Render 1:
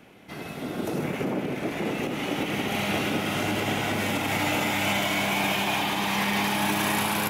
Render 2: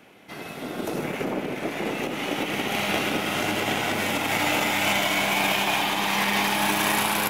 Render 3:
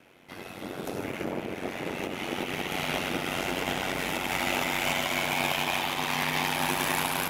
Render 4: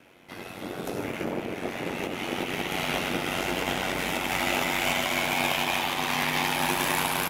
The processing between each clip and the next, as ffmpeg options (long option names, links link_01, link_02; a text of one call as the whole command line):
ffmpeg -i in.wav -af "aeval=exprs='0.224*(cos(1*acos(clip(val(0)/0.224,-1,1)))-cos(1*PI/2))+0.0316*(cos(3*acos(clip(val(0)/0.224,-1,1)))-cos(3*PI/2))+0.00282*(cos(8*acos(clip(val(0)/0.224,-1,1)))-cos(8*PI/2))':channel_layout=same,lowshelf=frequency=210:gain=-9,volume=6.5dB" out.wav
ffmpeg -i in.wav -af "aeval=exprs='val(0)*sin(2*PI*46*n/s)':channel_layout=same,volume=-2dB" out.wav
ffmpeg -i in.wav -filter_complex "[0:a]asplit=2[link_01][link_02];[link_02]adelay=17,volume=-11.5dB[link_03];[link_01][link_03]amix=inputs=2:normalize=0,volume=1.5dB" out.wav